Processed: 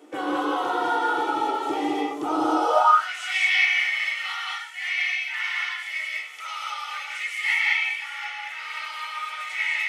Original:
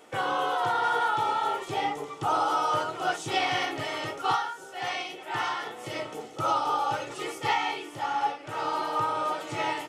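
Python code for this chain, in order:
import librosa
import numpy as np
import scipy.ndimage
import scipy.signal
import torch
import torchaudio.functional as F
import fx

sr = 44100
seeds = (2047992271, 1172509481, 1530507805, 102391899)

y = fx.rev_gated(x, sr, seeds[0], gate_ms=240, shape='rising', drr_db=-1.5)
y = fx.filter_sweep_highpass(y, sr, from_hz=300.0, to_hz=2100.0, start_s=2.57, end_s=3.09, q=7.0)
y = y * 10.0 ** (-3.5 / 20.0)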